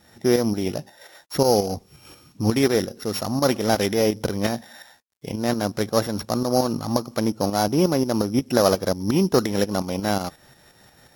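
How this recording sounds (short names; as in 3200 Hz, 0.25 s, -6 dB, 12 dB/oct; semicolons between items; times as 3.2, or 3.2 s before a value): a buzz of ramps at a fixed pitch in blocks of 8 samples; tremolo saw up 5.6 Hz, depth 60%; a quantiser's noise floor 12-bit, dither none; AAC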